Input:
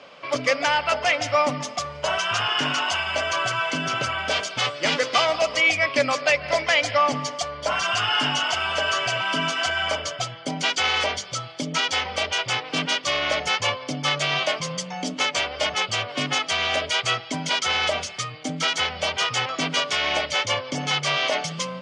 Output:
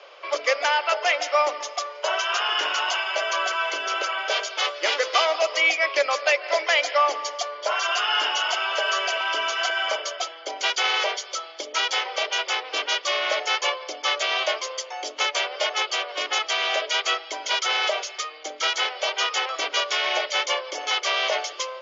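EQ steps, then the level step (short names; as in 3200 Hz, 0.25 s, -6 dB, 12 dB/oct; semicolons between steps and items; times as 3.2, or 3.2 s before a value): steep high-pass 340 Hz 72 dB/oct; Chebyshev low-pass 7200 Hz, order 10; 0.0 dB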